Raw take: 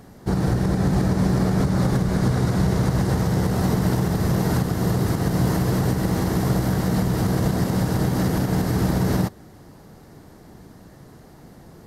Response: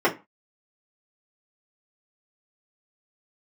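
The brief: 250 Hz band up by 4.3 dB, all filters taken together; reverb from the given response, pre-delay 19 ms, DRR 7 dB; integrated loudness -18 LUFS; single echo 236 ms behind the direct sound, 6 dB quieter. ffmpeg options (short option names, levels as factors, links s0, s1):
-filter_complex "[0:a]equalizer=f=250:t=o:g=6.5,aecho=1:1:236:0.501,asplit=2[s0][s1];[1:a]atrim=start_sample=2205,adelay=19[s2];[s1][s2]afir=irnorm=-1:irlink=0,volume=0.0596[s3];[s0][s3]amix=inputs=2:normalize=0,volume=0.891"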